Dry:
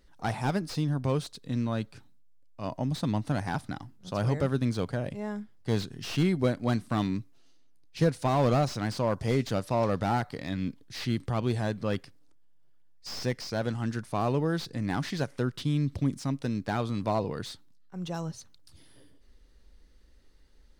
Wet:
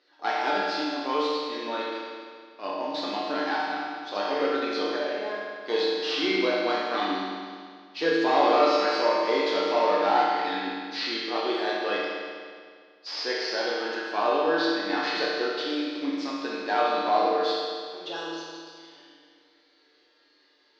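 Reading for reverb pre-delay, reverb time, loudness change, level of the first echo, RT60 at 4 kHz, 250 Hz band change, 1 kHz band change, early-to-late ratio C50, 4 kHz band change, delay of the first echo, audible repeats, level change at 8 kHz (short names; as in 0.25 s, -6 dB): 7 ms, 2.0 s, +4.0 dB, none, 1.9 s, -1.0 dB, +9.0 dB, -2.0 dB, +10.5 dB, none, none, n/a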